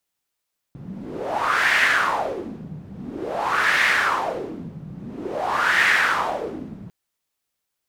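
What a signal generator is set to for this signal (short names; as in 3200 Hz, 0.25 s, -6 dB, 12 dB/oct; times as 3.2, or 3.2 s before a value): wind-like swept noise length 6.15 s, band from 160 Hz, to 1900 Hz, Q 4, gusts 3, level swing 19 dB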